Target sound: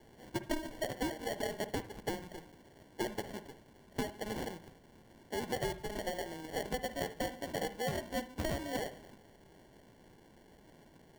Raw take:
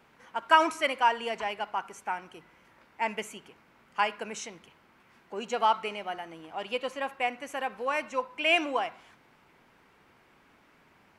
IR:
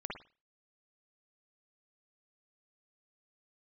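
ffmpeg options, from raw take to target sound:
-filter_complex "[0:a]acrusher=samples=35:mix=1:aa=0.000001,acompressor=threshold=0.02:ratio=16,asplit=2[s0][s1];[1:a]atrim=start_sample=2205[s2];[s1][s2]afir=irnorm=-1:irlink=0,volume=0.316[s3];[s0][s3]amix=inputs=2:normalize=0"

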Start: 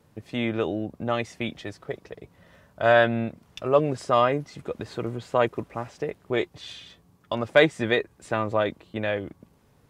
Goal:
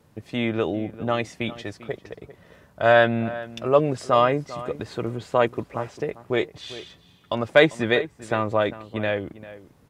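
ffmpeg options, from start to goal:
-filter_complex "[0:a]asplit=2[s0][s1];[s1]adelay=396.5,volume=0.158,highshelf=f=4000:g=-8.92[s2];[s0][s2]amix=inputs=2:normalize=0,volume=1.26"

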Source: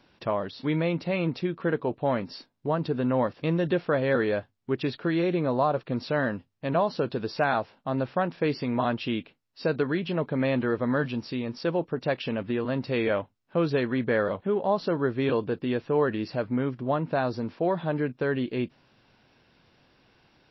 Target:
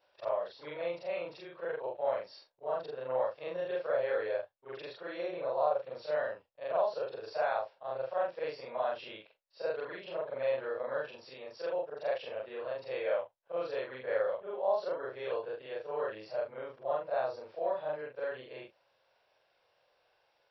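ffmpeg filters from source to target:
-af "afftfilt=real='re':imag='-im':win_size=4096:overlap=0.75,lowshelf=f=370:t=q:w=3:g=-14,volume=0.473"

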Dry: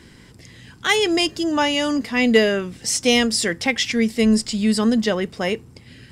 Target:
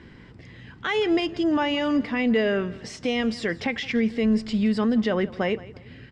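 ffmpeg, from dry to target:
-filter_complex "[0:a]alimiter=limit=0.188:level=0:latency=1:release=76,lowpass=2600,asplit=2[s0][s1];[s1]aecho=0:1:169|338|507:0.112|0.0359|0.0115[s2];[s0][s2]amix=inputs=2:normalize=0"

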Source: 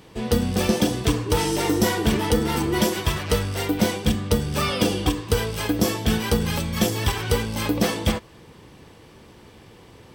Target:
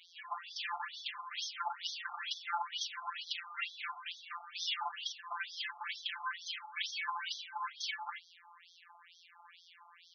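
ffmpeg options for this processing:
-af "afftfilt=real='hypot(re,im)*cos(PI*b)':imag='0':win_size=1024:overlap=0.75,aeval=exprs='(tanh(11.2*val(0)+0.55)-tanh(0.55))/11.2':c=same,afftfilt=real='re*between(b*sr/1024,970*pow(4600/970,0.5+0.5*sin(2*PI*2.2*pts/sr))/1.41,970*pow(4600/970,0.5+0.5*sin(2*PI*2.2*pts/sr))*1.41)':imag='im*between(b*sr/1024,970*pow(4600/970,0.5+0.5*sin(2*PI*2.2*pts/sr))/1.41,970*pow(4600/970,0.5+0.5*sin(2*PI*2.2*pts/sr))*1.41)':win_size=1024:overlap=0.75,volume=2"

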